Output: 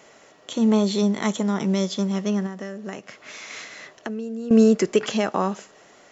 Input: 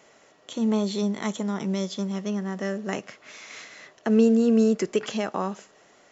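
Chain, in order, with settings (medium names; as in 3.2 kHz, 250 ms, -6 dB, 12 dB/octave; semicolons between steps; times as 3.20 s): 2.46–4.51 s: compression 6:1, threshold -35 dBFS, peak gain reduction 19 dB; trim +5 dB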